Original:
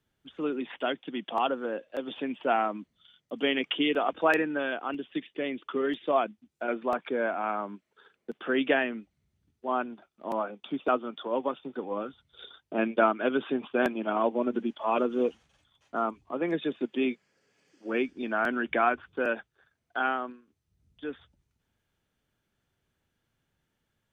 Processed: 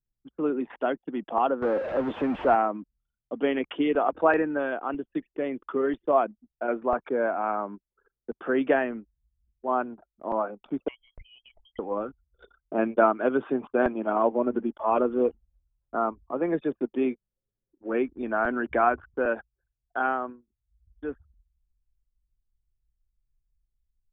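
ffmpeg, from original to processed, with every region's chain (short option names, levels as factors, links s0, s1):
-filter_complex "[0:a]asettb=1/sr,asplit=3[s0][s1][s2];[s0]atrim=end=1.624[s3];[s1]atrim=start=1.62:end=2.55,asetpts=PTS-STARTPTS,afade=t=in:d=0.004:c=qsin,afade=t=out:st=0.926:d=0.004:c=qsin,aeval=exprs='val(0)+0.5*0.0376*sgn(val(0))':c=same,acrossover=split=2800[s4][s5];[s5]acompressor=threshold=0.0112:ratio=4:attack=1:release=60[s6];[s4][s6]amix=inputs=2:normalize=0,highpass=f=95:p=1[s7];[s2]atrim=start=2.546[s8];[s3][s7]acrossfade=d=0.004:c1=hsin:c2=qsin[s9];[s9][s8]acrossfade=d=0.004:c1=qsin:c2=hsin,asettb=1/sr,asplit=3[s10][s11][s12];[s10]atrim=end=10.884[s13];[s11]atrim=start=10.88:end=11.79,asetpts=PTS-STARTPTS,afade=t=in:d=0.004:c=qsin,afade=t=out:st=0.906:d=0.004:c=qsin,acompressor=threshold=0.00708:ratio=3:attack=3.2:release=140:knee=1:detection=peak,lowpass=f=3000:t=q:w=0.5098,lowpass=f=3000:t=q:w=0.6013,lowpass=f=3000:t=q:w=0.9,lowpass=f=3000:t=q:w=2.563,afreqshift=-3500[s14];[s12]atrim=start=11.786[s15];[s13][s14]acrossfade=d=0.004:c1=hsin:c2=qsin[s16];[s16][s15]acrossfade=d=0.004:c1=qsin:c2=hsin,lowpass=1300,anlmdn=0.001,asubboost=boost=5.5:cutoff=72,volume=1.68"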